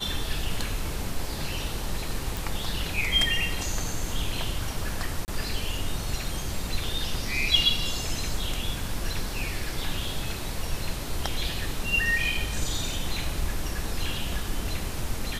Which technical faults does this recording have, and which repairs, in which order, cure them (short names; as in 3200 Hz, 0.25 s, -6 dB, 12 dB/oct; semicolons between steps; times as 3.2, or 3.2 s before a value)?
2.37 pop
5.25–5.28 gap 29 ms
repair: de-click; interpolate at 5.25, 29 ms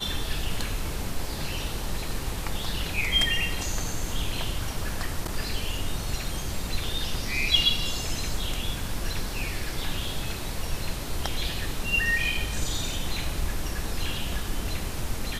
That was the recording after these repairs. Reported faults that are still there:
none